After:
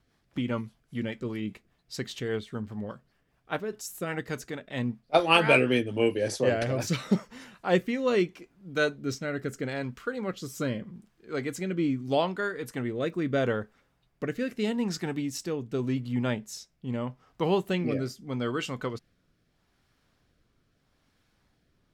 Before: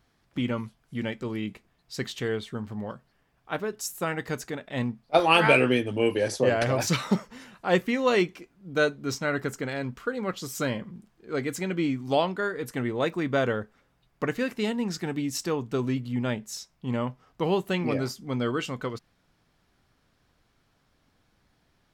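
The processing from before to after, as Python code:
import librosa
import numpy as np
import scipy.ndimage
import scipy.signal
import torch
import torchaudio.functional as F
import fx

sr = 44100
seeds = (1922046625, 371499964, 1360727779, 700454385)

y = fx.rotary_switch(x, sr, hz=5.0, then_hz=0.8, switch_at_s=5.64)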